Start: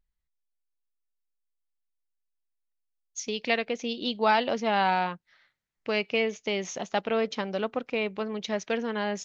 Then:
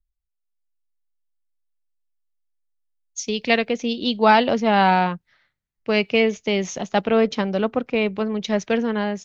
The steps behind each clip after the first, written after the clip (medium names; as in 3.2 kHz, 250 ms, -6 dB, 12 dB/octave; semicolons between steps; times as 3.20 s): bass shelf 230 Hz +10.5 dB; level rider gain up to 6 dB; three bands expanded up and down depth 40%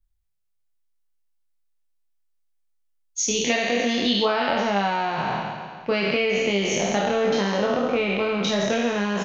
spectral sustain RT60 1.83 s; compression 6:1, threshold -20 dBFS, peak gain reduction 13 dB; doubling 25 ms -4 dB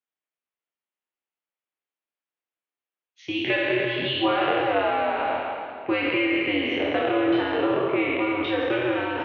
on a send at -8.5 dB: reverberation RT60 2.0 s, pre-delay 113 ms; on the sum: mistuned SSB -110 Hz 350–3300 Hz